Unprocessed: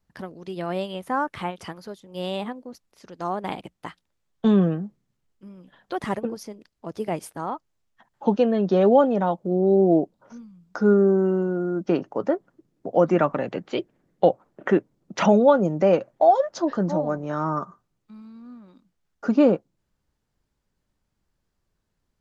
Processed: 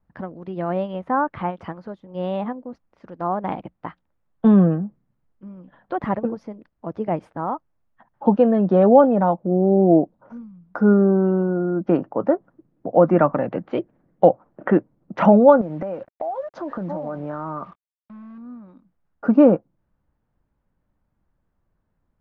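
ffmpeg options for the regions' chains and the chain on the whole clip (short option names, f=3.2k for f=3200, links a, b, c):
-filter_complex "[0:a]asettb=1/sr,asplit=3[a][b][c];[a]atrim=end=15.614[d];[b]atrim=start=15.61:end=18.38,asetpts=PTS-STARTPTS,afade=t=in:d=0.004:c=qsin,afade=t=out:st=2.766:d=0.004:c=qsin,lowshelf=f=210:g=-4.5,acompressor=threshold=-28dB:ratio=12:attack=3.2:release=140:knee=1:detection=peak,acrusher=bits=7:mix=0:aa=0.5[e];[c]atrim=start=18.376[f];[d][e]acrossfade=d=0.004:c1=hsin:c2=qsin[g];[g][f]acrossfade=d=0.004:c1=qsin:c2=hsin,lowpass=1.4k,equalizer=f=400:t=o:w=0.25:g=-6.5,volume=5dB"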